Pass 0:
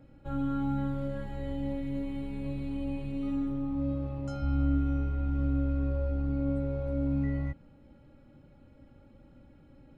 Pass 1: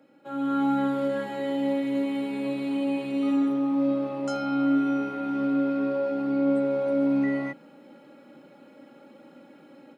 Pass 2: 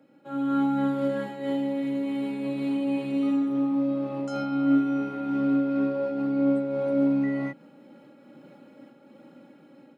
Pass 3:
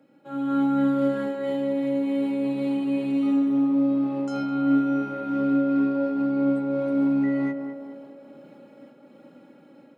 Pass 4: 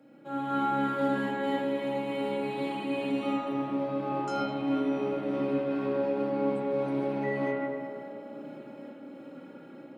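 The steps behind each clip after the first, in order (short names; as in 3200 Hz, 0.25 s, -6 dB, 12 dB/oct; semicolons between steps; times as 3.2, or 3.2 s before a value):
Bessel high-pass 330 Hz, order 8; AGC gain up to 9 dB; gain +3.5 dB
low shelf 180 Hz +10.5 dB; noise-modulated level, depth 60%
narrowing echo 0.21 s, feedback 68%, band-pass 580 Hz, level -5 dB
spring tank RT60 1.4 s, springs 31/48/59 ms, chirp 80 ms, DRR -2.5 dB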